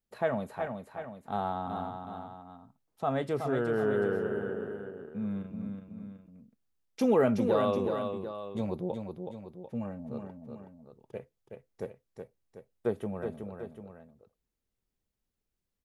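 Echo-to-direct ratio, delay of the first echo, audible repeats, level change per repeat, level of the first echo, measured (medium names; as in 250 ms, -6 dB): -5.0 dB, 372 ms, 2, -5.5 dB, -6.0 dB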